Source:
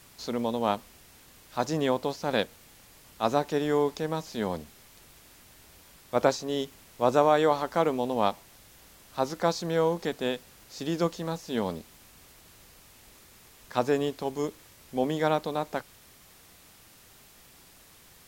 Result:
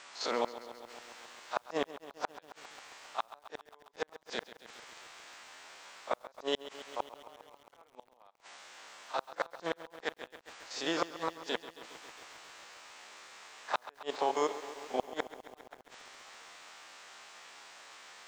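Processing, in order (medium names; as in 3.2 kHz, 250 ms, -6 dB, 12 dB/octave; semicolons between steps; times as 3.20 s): spectrogram pixelated in time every 50 ms; high-pass 870 Hz 12 dB/octave; treble shelf 2.7 kHz -11 dB; pre-echo 36 ms -14.5 dB; inverted gate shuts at -30 dBFS, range -42 dB; steep low-pass 8.1 kHz 48 dB/octave; bit-crushed delay 135 ms, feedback 80%, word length 11-bit, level -14.5 dB; trim +12.5 dB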